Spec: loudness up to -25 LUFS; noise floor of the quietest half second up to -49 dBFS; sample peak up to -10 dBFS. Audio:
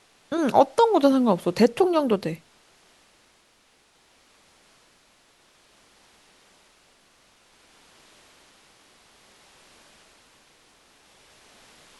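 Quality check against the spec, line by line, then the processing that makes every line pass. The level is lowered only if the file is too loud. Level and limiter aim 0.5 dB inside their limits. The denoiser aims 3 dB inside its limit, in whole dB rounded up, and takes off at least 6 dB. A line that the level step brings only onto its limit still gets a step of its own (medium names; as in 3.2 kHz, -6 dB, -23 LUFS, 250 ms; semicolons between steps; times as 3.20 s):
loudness -21.5 LUFS: fail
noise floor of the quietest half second -61 dBFS: pass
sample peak -3.5 dBFS: fail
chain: trim -4 dB; peak limiter -10.5 dBFS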